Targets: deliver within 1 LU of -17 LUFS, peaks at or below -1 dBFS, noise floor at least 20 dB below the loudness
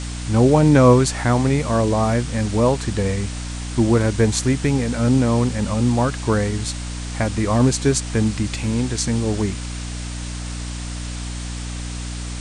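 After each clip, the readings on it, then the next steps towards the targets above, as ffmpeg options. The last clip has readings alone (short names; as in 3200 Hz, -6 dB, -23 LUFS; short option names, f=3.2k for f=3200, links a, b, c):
hum 60 Hz; harmonics up to 300 Hz; hum level -26 dBFS; noise floor -29 dBFS; noise floor target -40 dBFS; loudness -20.0 LUFS; peak -2.0 dBFS; loudness target -17.0 LUFS
-> -af "bandreject=f=60:t=h:w=4,bandreject=f=120:t=h:w=4,bandreject=f=180:t=h:w=4,bandreject=f=240:t=h:w=4,bandreject=f=300:t=h:w=4"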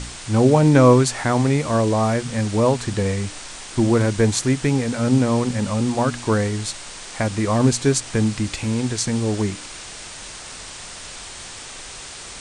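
hum none; noise floor -37 dBFS; noise floor target -40 dBFS
-> -af "afftdn=nr=6:nf=-37"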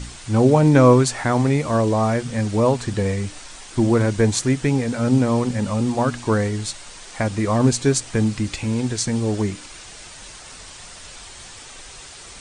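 noise floor -40 dBFS; loudness -19.5 LUFS; peak -1.0 dBFS; loudness target -17.0 LUFS
-> -af "volume=2.5dB,alimiter=limit=-1dB:level=0:latency=1"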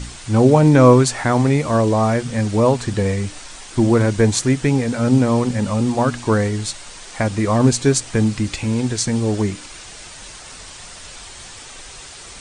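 loudness -17.0 LUFS; peak -1.0 dBFS; noise floor -38 dBFS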